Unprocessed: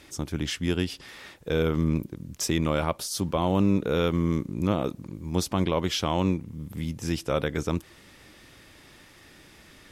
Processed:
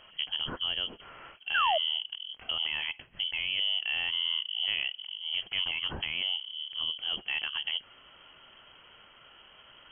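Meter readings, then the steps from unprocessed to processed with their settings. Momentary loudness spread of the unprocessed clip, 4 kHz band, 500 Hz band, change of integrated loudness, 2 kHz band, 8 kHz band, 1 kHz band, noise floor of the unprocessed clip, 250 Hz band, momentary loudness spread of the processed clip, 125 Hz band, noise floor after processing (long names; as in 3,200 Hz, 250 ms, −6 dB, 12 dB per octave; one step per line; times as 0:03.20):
9 LU, +9.0 dB, −16.0 dB, −3.0 dB, +4.0 dB, below −40 dB, −3.0 dB, −53 dBFS, −27.5 dB, 9 LU, −25.5 dB, −57 dBFS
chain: brickwall limiter −19 dBFS, peak gain reduction 7.5 dB
voice inversion scrambler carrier 3,200 Hz
sound drawn into the spectrogram fall, 0:01.54–0:01.78, 590–1,700 Hz −24 dBFS
level −2.5 dB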